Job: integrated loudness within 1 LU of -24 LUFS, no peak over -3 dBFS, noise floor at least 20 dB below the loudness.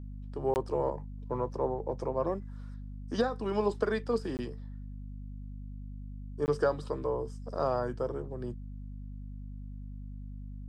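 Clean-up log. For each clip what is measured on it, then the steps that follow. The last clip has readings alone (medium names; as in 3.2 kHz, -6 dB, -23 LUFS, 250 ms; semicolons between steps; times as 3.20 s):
dropouts 3; longest dropout 19 ms; hum 50 Hz; highest harmonic 250 Hz; hum level -39 dBFS; loudness -33.5 LUFS; peak level -15.5 dBFS; loudness target -24.0 LUFS
-> interpolate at 0.54/4.37/6.46 s, 19 ms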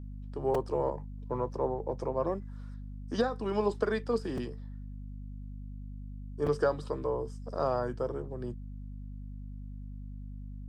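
dropouts 0; hum 50 Hz; highest harmonic 250 Hz; hum level -39 dBFS
-> de-hum 50 Hz, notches 5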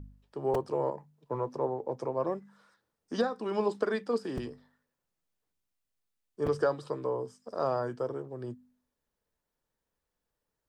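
hum not found; loudness -33.5 LUFS; peak level -16.0 dBFS; loudness target -24.0 LUFS
-> trim +9.5 dB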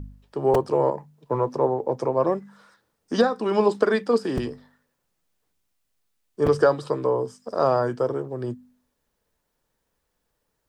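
loudness -24.0 LUFS; peak level -6.5 dBFS; noise floor -76 dBFS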